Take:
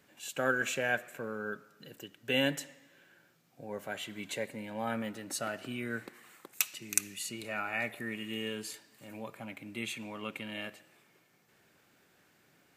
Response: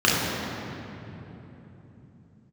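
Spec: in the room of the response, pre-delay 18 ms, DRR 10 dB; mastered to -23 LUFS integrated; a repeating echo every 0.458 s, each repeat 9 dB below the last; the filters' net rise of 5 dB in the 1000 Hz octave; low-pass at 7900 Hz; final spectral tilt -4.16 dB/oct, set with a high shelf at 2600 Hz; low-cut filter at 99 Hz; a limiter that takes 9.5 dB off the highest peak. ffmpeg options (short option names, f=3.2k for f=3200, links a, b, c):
-filter_complex "[0:a]highpass=99,lowpass=7.9k,equalizer=f=1k:t=o:g=8.5,highshelf=f=2.6k:g=-5.5,alimiter=limit=-22.5dB:level=0:latency=1,aecho=1:1:458|916|1374|1832:0.355|0.124|0.0435|0.0152,asplit=2[a][b];[1:a]atrim=start_sample=2205,adelay=18[c];[b][c]afir=irnorm=-1:irlink=0,volume=-31dB[d];[a][d]amix=inputs=2:normalize=0,volume=14dB"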